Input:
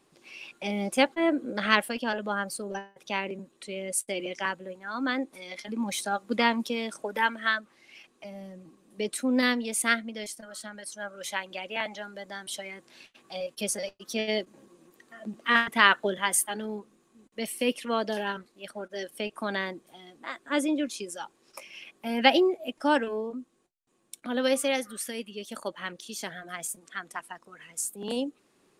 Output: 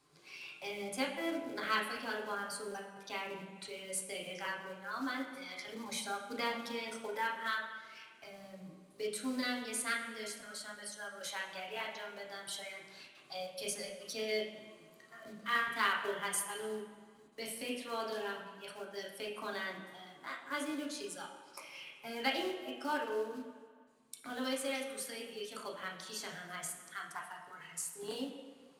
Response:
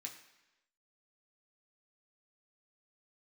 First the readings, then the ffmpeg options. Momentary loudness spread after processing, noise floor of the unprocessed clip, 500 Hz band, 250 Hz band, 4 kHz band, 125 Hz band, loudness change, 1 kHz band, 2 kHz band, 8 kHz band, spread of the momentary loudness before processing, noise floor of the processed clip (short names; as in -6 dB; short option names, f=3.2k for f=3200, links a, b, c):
14 LU, -67 dBFS, -10.0 dB, -12.5 dB, -8.5 dB, n/a, -10.5 dB, -9.5 dB, -9.5 dB, -8.5 dB, 18 LU, -61 dBFS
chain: -filter_complex "[0:a]bandreject=f=227:t=h:w=4,bandreject=f=454:t=h:w=4,bandreject=f=681:t=h:w=4,acrusher=bits=5:mode=log:mix=0:aa=0.000001,acompressor=threshold=-41dB:ratio=1.5[a];[1:a]atrim=start_sample=2205,asetrate=25578,aresample=44100[b];[a][b]afir=irnorm=-1:irlink=0,volume=-2.5dB"